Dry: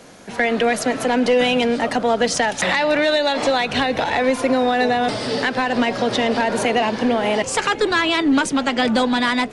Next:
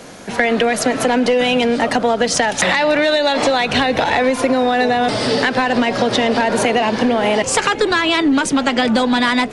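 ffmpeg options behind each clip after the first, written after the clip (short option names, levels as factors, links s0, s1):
-af "acompressor=threshold=0.112:ratio=6,volume=2.24"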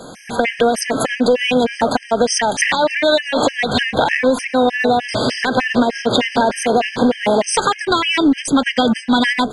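-af "afftfilt=real='re*gt(sin(2*PI*3.3*pts/sr)*(1-2*mod(floor(b*sr/1024/1600),2)),0)':imag='im*gt(sin(2*PI*3.3*pts/sr)*(1-2*mod(floor(b*sr/1024/1600),2)),0)':win_size=1024:overlap=0.75,volume=1.33"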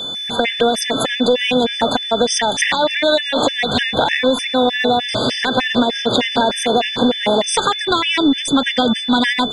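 -af "aeval=exprs='val(0)+0.0794*sin(2*PI*3500*n/s)':c=same,volume=0.891"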